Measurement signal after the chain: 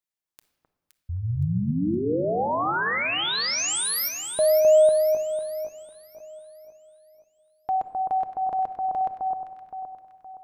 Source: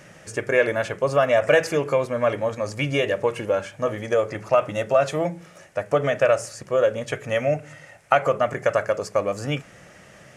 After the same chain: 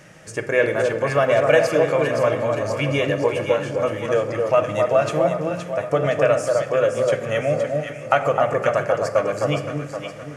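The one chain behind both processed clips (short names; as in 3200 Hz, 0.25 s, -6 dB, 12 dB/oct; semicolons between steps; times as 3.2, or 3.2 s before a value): on a send: echo with dull and thin repeats by turns 0.259 s, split 1300 Hz, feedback 65%, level -3 dB; on the sum: shoebox room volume 1400 m³, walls mixed, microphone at 0.58 m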